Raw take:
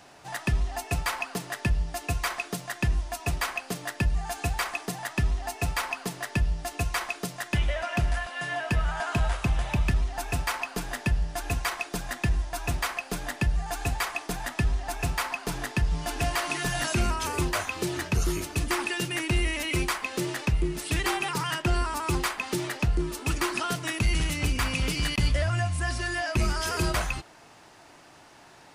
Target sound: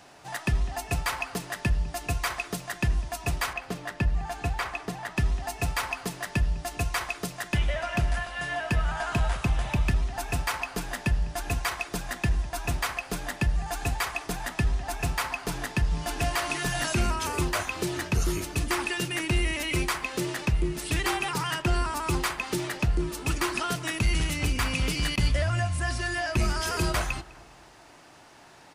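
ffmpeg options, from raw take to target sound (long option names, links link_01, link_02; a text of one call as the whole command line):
ffmpeg -i in.wav -filter_complex "[0:a]asettb=1/sr,asplit=3[link_01][link_02][link_03];[link_01]atrim=end=3.534[link_04];[link_02]atrim=start=3.53:end=5.17,asetpts=PTS-STARTPTS,afade=type=in:duration=0.004:curve=qsin,afade=type=out:start_time=1.636:duration=0.004:curve=qsin,highshelf=frequency=5000:gain=-11.5[link_05];[link_03]atrim=start=5.166[link_06];[link_04][link_05]acrossfade=duration=0.004:curve1=hsin:curve2=qsin[link_07];[link_07][link_06]acrossfade=duration=0.004:curve1=qsin:curve2=hsin,asplit=2[link_08][link_09];[link_09]adelay=203,lowpass=frequency=2000:poles=1,volume=-19dB,asplit=2[link_10][link_11];[link_11]adelay=203,lowpass=frequency=2000:poles=1,volume=0.46,asplit=2[link_12][link_13];[link_13]adelay=203,lowpass=frequency=2000:poles=1,volume=0.46,asplit=2[link_14][link_15];[link_15]adelay=203,lowpass=frequency=2000:poles=1,volume=0.46[link_16];[link_08][link_10][link_12][link_14][link_16]amix=inputs=5:normalize=0" out.wav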